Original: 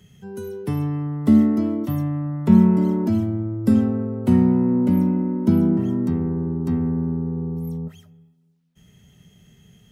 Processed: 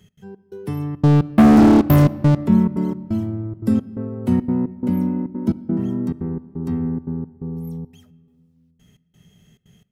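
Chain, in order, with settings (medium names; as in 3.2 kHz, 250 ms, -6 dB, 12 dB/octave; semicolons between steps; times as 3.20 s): 1.01–2.35 s: waveshaping leveller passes 5; trance gate "x.xx..xxxx" 174 bpm -60 dB; on a send: reverberation RT60 2.1 s, pre-delay 4 ms, DRR 17 dB; on the sum: trim -1.5 dB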